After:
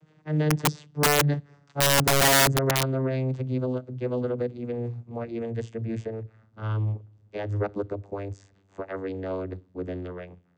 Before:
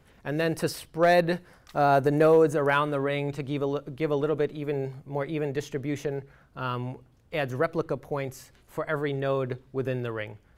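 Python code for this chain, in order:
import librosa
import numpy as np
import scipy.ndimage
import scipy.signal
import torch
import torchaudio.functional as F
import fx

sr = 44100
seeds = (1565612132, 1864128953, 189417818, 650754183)

y = fx.vocoder_glide(x, sr, note=51, semitones=-10)
y = (np.mod(10.0 ** (17.0 / 20.0) * y + 1.0, 2.0) - 1.0) / 10.0 ** (17.0 / 20.0)
y = fx.high_shelf(y, sr, hz=4600.0, db=8.0)
y = y * librosa.db_to_amplitude(1.0)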